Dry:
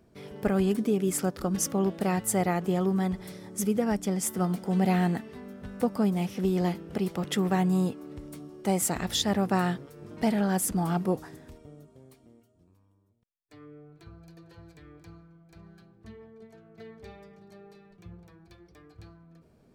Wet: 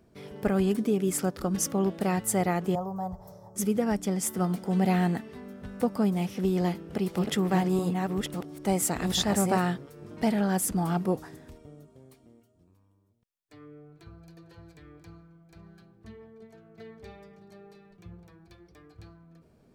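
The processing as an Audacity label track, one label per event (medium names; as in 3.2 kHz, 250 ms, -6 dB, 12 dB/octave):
2.750000	3.560000	FFT filter 130 Hz 0 dB, 300 Hz -21 dB, 610 Hz +4 dB, 980 Hz +2 dB, 2.2 kHz -27 dB, 3.5 kHz -24 dB, 6.1 kHz -7 dB, 9.7 kHz -17 dB, 15 kHz 0 dB
6.460000	9.690000	chunks repeated in reverse 665 ms, level -4 dB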